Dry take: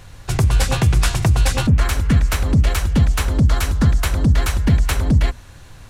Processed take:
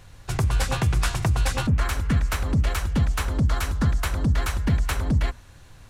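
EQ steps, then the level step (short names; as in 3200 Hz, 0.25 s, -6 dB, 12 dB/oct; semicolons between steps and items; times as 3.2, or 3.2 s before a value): dynamic EQ 1200 Hz, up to +4 dB, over -36 dBFS, Q 0.92; -7.0 dB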